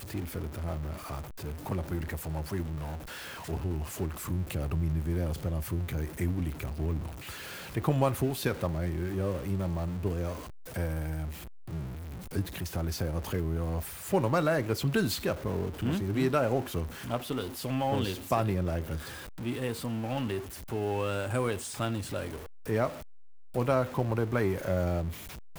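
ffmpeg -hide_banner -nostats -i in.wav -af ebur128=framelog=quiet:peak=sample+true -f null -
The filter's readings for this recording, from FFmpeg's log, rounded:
Integrated loudness:
  I:         -32.4 LUFS
  Threshold: -42.5 LUFS
Loudness range:
  LRA:         5.5 LU
  Threshold: -52.5 LUFS
  LRA low:   -35.6 LUFS
  LRA high:  -30.2 LUFS
Sample peak:
  Peak:      -11.8 dBFS
True peak:
  Peak:      -11.8 dBFS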